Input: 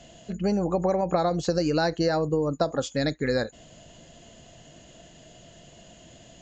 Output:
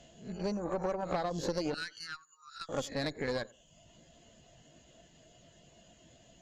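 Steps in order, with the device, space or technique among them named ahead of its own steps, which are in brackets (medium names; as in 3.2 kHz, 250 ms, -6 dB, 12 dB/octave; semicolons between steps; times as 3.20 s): reverse spectral sustain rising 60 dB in 0.40 s; 1.74–2.69 s: elliptic high-pass 1.3 kHz, stop band 50 dB; reverb removal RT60 0.8 s; rockabilly slapback (valve stage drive 20 dB, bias 0.7; tape echo 92 ms, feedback 30%, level -20 dB, low-pass 1.1 kHz); trim -5 dB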